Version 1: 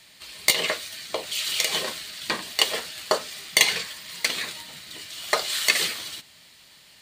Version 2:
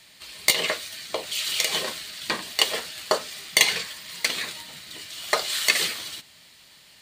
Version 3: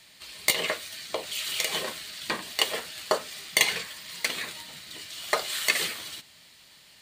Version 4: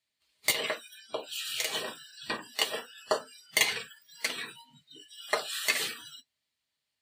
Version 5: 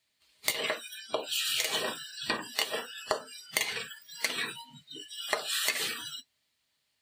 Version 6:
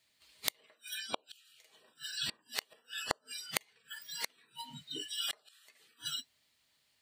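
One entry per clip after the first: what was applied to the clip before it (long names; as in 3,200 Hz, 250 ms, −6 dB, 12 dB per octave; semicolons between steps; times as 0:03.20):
no processing that can be heard
dynamic equaliser 5,000 Hz, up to −4 dB, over −36 dBFS, Q 0.95; level −2 dB
notch comb filter 180 Hz; noise reduction from a noise print of the clip's start 27 dB; level −2 dB
downward compressor 16 to 1, threshold −33 dBFS, peak gain reduction 15 dB; level +7 dB
gate with flip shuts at −26 dBFS, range −36 dB; level +3 dB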